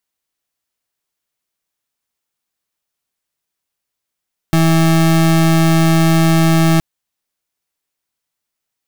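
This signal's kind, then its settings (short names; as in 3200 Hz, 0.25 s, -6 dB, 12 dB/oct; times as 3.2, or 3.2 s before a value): pulse 163 Hz, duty 33% -11 dBFS 2.27 s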